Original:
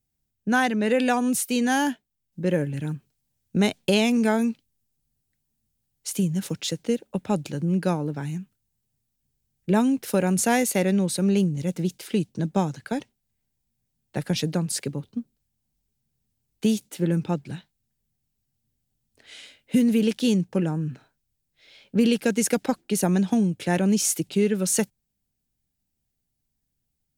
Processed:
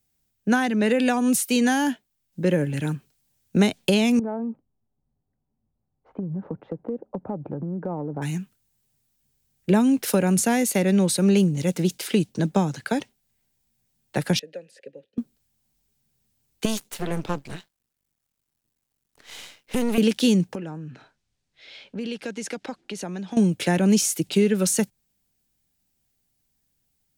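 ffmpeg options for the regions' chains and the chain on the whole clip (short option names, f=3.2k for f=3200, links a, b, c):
-filter_complex "[0:a]asettb=1/sr,asplit=3[a][b][c];[a]atrim=end=4.194[d];[b]atrim=start=4.19:end=8.22,asetpts=PTS-STARTPTS,afade=t=in:d=0.004:c=qsin,afade=t=out:st=4.026:d=0.004:c=qsin,lowpass=f=1k:w=0.5412,lowpass=f=1k:w=1.3066,acompressor=threshold=-29dB:ratio=10:attack=3.2:release=140:knee=1:detection=peak[e];[c]atrim=start=8.216[f];[d][e]acrossfade=d=0.004:c1=hsin:c2=qsin[g];[g][f]acrossfade=d=0.004:c1=qsin:c2=hsin,asettb=1/sr,asplit=3[h][i][j];[h]atrim=end=14.394[k];[i]atrim=start=14.39:end=15.18,asetpts=PTS-STARTPTS,afade=t=in:d=0.004:c=qsin,afade=t=out:st=0.786:d=0.004:c=qsin,equalizer=f=1k:w=0.37:g=-5,acrossover=split=210|1100[l][m][n];[l]acompressor=threshold=-35dB:ratio=4[o];[m]acompressor=threshold=-31dB:ratio=4[p];[n]acompressor=threshold=-36dB:ratio=4[q];[o][p][q]amix=inputs=3:normalize=0,asplit=3[r][s][t];[r]bandpass=f=530:t=q:w=8,volume=0dB[u];[s]bandpass=f=1.84k:t=q:w=8,volume=-6dB[v];[t]bandpass=f=2.48k:t=q:w=8,volume=-9dB[w];[u][v][w]amix=inputs=3:normalize=0[x];[j]atrim=start=15.176[y];[k][x]acrossfade=d=0.004:c1=hsin:c2=qsin[z];[z][y]acrossfade=d=0.004:c1=qsin:c2=hsin,asettb=1/sr,asplit=3[aa][ab][ac];[aa]atrim=end=16.654[ad];[ab]atrim=start=16.65:end=19.98,asetpts=PTS-STARTPTS,afade=t=in:d=0.004:c=qsin,afade=t=out:st=3.326:d=0.004:c=qsin,acompressor=threshold=-21dB:ratio=3:attack=3.2:release=140:knee=1:detection=peak,aeval=exprs='max(val(0),0)':c=same[ae];[ac]atrim=start=19.976[af];[ad][ae]acrossfade=d=0.004:c1=hsin:c2=qsin[ag];[ag][af]acrossfade=d=0.004:c1=qsin:c2=hsin,asettb=1/sr,asplit=3[ah][ai][aj];[ah]atrim=end=20.554[ak];[ai]atrim=start=20.55:end=23.37,asetpts=PTS-STARTPTS,afade=t=in:d=0.004:c=qsin,afade=t=out:st=2.816:d=0.004:c=qsin,lowpass=5.7k,acompressor=threshold=-45dB:ratio=2:attack=3.2:release=140:knee=1:detection=peak[al];[aj]atrim=start=23.366[am];[ak][al]acrossfade=d=0.004:c1=hsin:c2=qsin[an];[an][am]acrossfade=d=0.004:c1=qsin:c2=hsin,lowshelf=f=280:g=-7.5,acrossover=split=300[ao][ap];[ap]acompressor=threshold=-30dB:ratio=6[aq];[ao][aq]amix=inputs=2:normalize=0,volume=8dB"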